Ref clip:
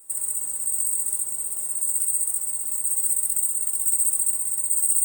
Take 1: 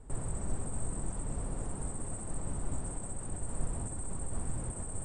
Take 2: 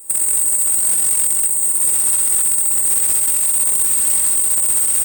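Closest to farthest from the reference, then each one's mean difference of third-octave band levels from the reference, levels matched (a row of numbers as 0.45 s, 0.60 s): 2, 1; 6.5 dB, 22.5 dB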